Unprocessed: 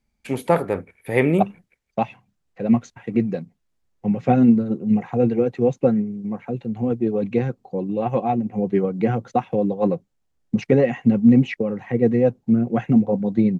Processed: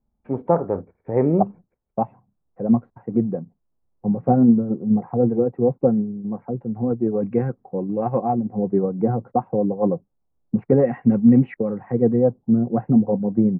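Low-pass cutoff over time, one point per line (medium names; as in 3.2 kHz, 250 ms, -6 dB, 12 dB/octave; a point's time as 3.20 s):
low-pass 24 dB/octave
6.45 s 1.1 kHz
7.39 s 1.6 kHz
8.03 s 1.6 kHz
8.51 s 1.1 kHz
10.57 s 1.1 kHz
10.97 s 1.7 kHz
11.51 s 1.7 kHz
12.37 s 1.1 kHz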